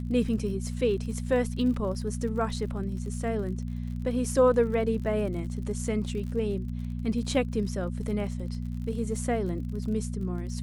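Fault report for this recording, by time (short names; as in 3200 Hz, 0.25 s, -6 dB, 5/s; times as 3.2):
crackle 49/s -38 dBFS
hum 60 Hz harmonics 4 -33 dBFS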